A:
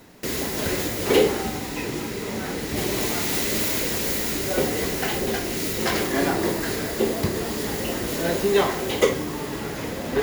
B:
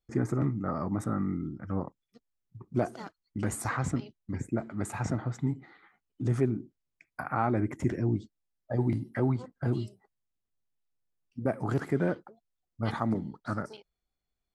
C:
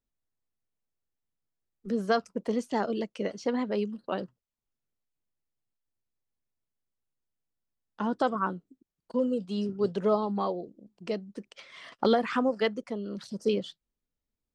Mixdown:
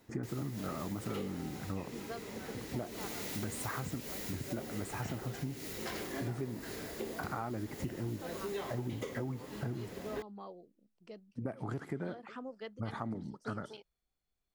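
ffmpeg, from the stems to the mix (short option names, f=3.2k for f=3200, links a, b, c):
-filter_complex "[0:a]volume=-15.5dB[a];[1:a]volume=-1.5dB[b];[2:a]volume=-18dB[c];[a][b][c]amix=inputs=3:normalize=0,acompressor=threshold=-35dB:ratio=6"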